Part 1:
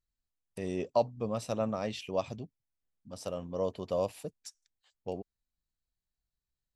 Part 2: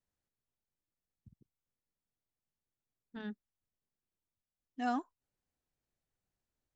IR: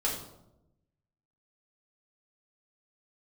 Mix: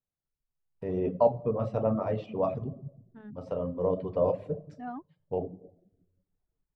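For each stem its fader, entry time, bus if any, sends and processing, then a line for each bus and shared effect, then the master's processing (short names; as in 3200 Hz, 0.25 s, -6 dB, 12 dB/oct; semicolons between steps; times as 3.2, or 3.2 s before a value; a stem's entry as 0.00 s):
-9.0 dB, 0.25 s, send -5.5 dB, AGC gain up to 9.5 dB
-4.0 dB, 0.00 s, no send, dry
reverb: on, RT60 0.90 s, pre-delay 4 ms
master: LPF 1300 Hz 12 dB/oct; bell 140 Hz +9 dB 0.28 oct; reverb removal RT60 0.66 s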